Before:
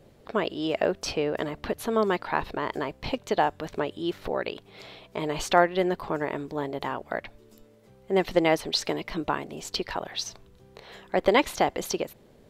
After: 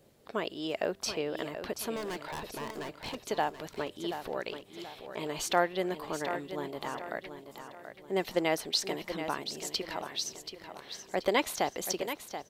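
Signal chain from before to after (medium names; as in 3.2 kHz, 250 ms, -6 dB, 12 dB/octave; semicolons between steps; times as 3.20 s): bass shelf 70 Hz -10.5 dB; 1.96–3.15 s: overload inside the chain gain 28 dB; treble shelf 5.1 kHz +10.5 dB; feedback delay 731 ms, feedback 39%, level -9.5 dB; trim -7 dB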